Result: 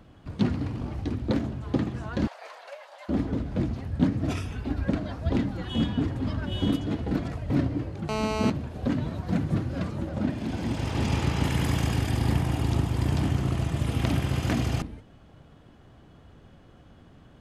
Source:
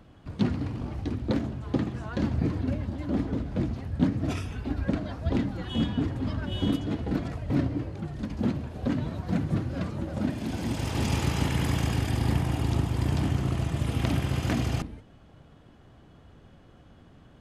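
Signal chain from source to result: 2.27–3.09 steep high-pass 570 Hz 48 dB/oct; 8.09–8.5 GSM buzz -30 dBFS; 10.09–11.44 high shelf 7600 Hz -11.5 dB; gain +1 dB

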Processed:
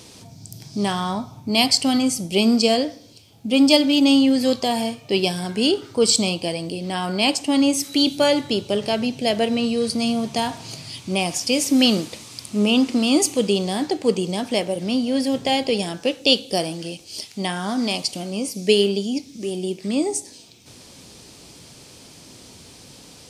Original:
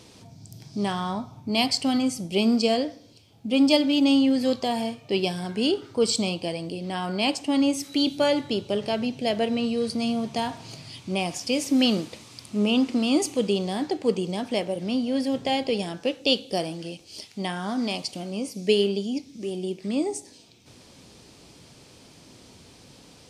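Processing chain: high shelf 5200 Hz +8 dB; gain +4 dB

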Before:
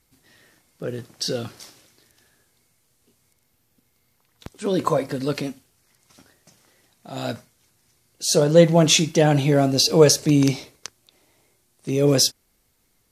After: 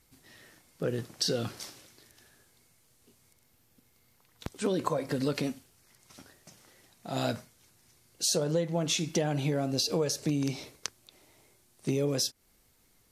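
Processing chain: compressor 16:1, threshold -25 dBFS, peak gain reduction 18.5 dB

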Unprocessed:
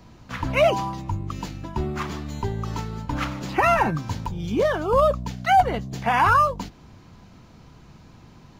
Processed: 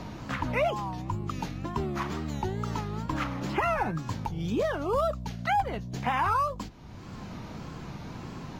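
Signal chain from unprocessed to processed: wow and flutter 120 cents; three-band squash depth 70%; gain -6.5 dB

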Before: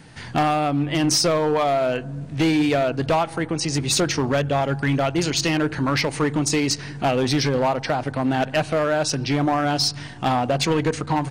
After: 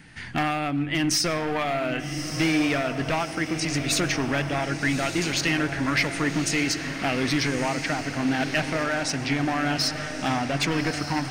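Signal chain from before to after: graphic EQ 125/500/1000/2000/4000/8000 Hz -6/-9/-6/+5/-4/-4 dB; diffused feedback echo 1.205 s, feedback 53%, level -8 dB; on a send at -20.5 dB: reverb RT60 0.50 s, pre-delay 70 ms

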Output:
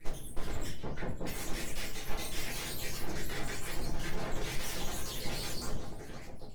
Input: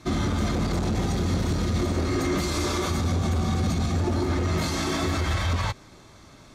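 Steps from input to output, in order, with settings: random spectral dropouts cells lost 78%; limiter -24.5 dBFS, peak gain reduction 7.5 dB; AGC gain up to 3 dB; soft clip -35 dBFS, distortion -6 dB; 0.69–1.27 band-pass 390 Hz, Q 0.66; full-wave rectifier; 1.89–2.4 flutter echo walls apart 7.5 m, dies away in 0.37 s; shoebox room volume 40 m³, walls mixed, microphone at 0.82 m; gain +2 dB; Opus 20 kbps 48000 Hz

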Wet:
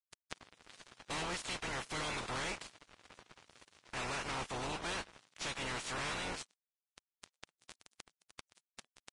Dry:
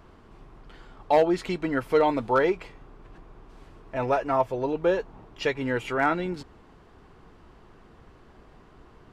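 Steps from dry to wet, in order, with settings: spectral limiter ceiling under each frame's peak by 29 dB; expander -50 dBFS; fuzz box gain 39 dB, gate -42 dBFS; flipped gate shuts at -27 dBFS, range -26 dB; gain +1.5 dB; Vorbis 32 kbps 22050 Hz

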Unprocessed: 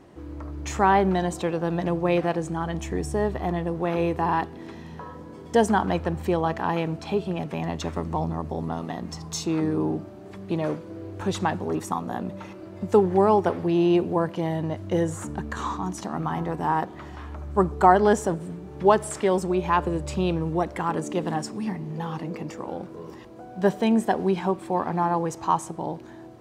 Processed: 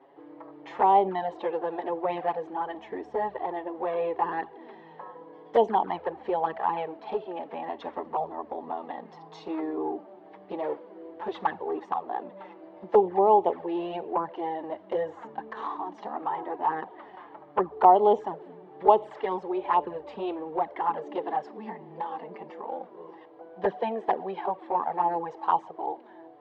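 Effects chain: speaker cabinet 440–3000 Hz, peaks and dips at 450 Hz +4 dB, 840 Hz +7 dB, 1400 Hz -7 dB, 2500 Hz -8 dB; envelope flanger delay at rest 7.6 ms, full sweep at -15 dBFS

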